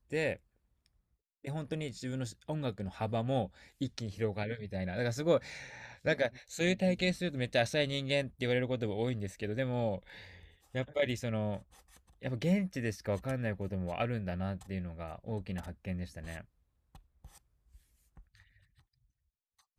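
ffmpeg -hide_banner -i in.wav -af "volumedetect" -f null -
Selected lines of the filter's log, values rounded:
mean_volume: -36.0 dB
max_volume: -15.1 dB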